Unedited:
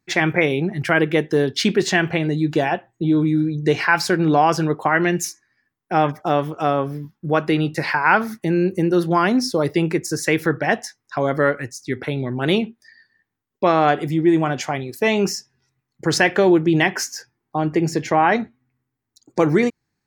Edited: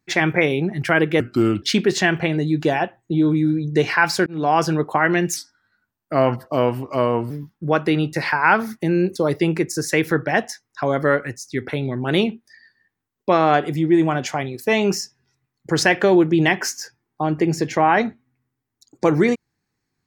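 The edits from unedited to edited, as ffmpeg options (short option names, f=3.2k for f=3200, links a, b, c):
-filter_complex "[0:a]asplit=7[a][b][c][d][e][f][g];[a]atrim=end=1.204[h];[b]atrim=start=1.2:end=1.53,asetpts=PTS-STARTPTS,asetrate=34398,aresample=44100[i];[c]atrim=start=1.526:end=4.17,asetpts=PTS-STARTPTS,afade=t=out:st=2.64:d=0.004:c=hsin[j];[d]atrim=start=4.17:end=5.274,asetpts=PTS-STARTPTS,afade=t=in:d=0.32[k];[e]atrim=start=5.27:end=6.92,asetpts=PTS-STARTPTS,asetrate=37485,aresample=44100[l];[f]atrim=start=6.916:end=8.772[m];[g]atrim=start=9.498[n];[h][i]acrossfade=d=0.004:c1=hsin:c2=hsin[o];[j][k]concat=n=2:v=0:a=1[p];[o][p]acrossfade=d=0.004:c1=hsin:c2=hsin[q];[q][l]acrossfade=d=0.004:c1=hsin:c2=hsin[r];[r][m]acrossfade=d=0.004:c1=hsin:c2=hsin[s];[s][n]acrossfade=d=0.004:c1=hsin:c2=hsin"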